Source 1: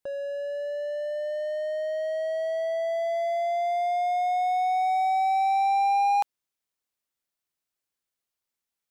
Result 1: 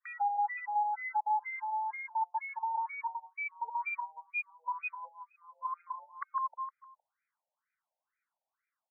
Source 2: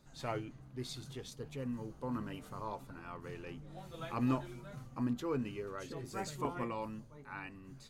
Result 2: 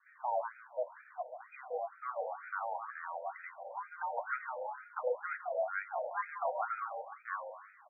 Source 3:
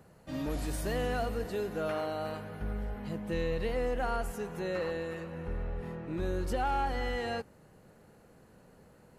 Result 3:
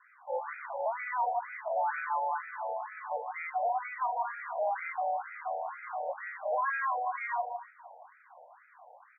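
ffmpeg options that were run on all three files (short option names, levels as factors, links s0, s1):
-filter_complex "[0:a]aemphasis=mode=production:type=50kf,asplit=2[s0][s1];[s1]adelay=154,lowpass=f=1200:p=1,volume=0.299,asplit=2[s2][s3];[s3]adelay=154,lowpass=f=1200:p=1,volume=0.47,asplit=2[s4][s5];[s5]adelay=154,lowpass=f=1200:p=1,volume=0.47,asplit=2[s6][s7];[s7]adelay=154,lowpass=f=1200:p=1,volume=0.47,asplit=2[s8][s9];[s9]adelay=154,lowpass=f=1200:p=1,volume=0.47[s10];[s2][s4][s6][s8][s10]amix=inputs=5:normalize=0[s11];[s0][s11]amix=inputs=2:normalize=0,highpass=f=260:t=q:w=0.5412,highpass=f=260:t=q:w=1.307,lowpass=f=3500:t=q:w=0.5176,lowpass=f=3500:t=q:w=0.7071,lowpass=f=3500:t=q:w=1.932,afreqshift=200,afftfilt=real='re*lt(hypot(re,im),0.355)':imag='im*lt(hypot(re,im),0.355)':win_size=1024:overlap=0.75,acrossover=split=720|1100[s12][s13][s14];[s12]crystalizer=i=4.5:c=0[s15];[s13]acompressor=threshold=0.00251:ratio=16[s16];[s14]aecho=1:1:2.1:0.36[s17];[s15][s16][s17]amix=inputs=3:normalize=0,adynamicequalizer=threshold=0.00316:dfrequency=870:dqfactor=0.8:tfrequency=870:tqfactor=0.8:attack=5:release=100:ratio=0.375:range=2:mode=boostabove:tftype=bell,afreqshift=50,asoftclip=type=tanh:threshold=0.0224,afftfilt=real='re*between(b*sr/1024,650*pow(1800/650,0.5+0.5*sin(2*PI*2.1*pts/sr))/1.41,650*pow(1800/650,0.5+0.5*sin(2*PI*2.1*pts/sr))*1.41)':imag='im*between(b*sr/1024,650*pow(1800/650,0.5+0.5*sin(2*PI*2.1*pts/sr))/1.41,650*pow(1800/650,0.5+0.5*sin(2*PI*2.1*pts/sr))*1.41)':win_size=1024:overlap=0.75,volume=2.66"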